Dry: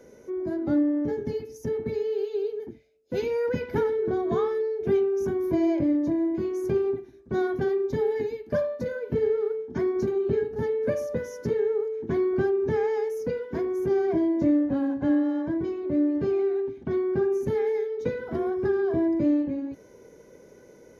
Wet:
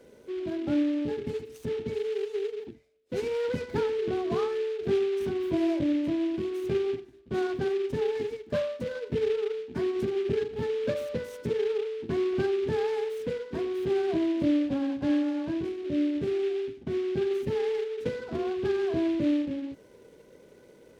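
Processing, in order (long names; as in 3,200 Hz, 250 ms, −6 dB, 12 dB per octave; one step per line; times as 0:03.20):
0:15.68–0:17.31: dynamic equaliser 1,100 Hz, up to −7 dB, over −47 dBFS, Q 1.3
short delay modulated by noise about 2,400 Hz, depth 0.033 ms
level −3 dB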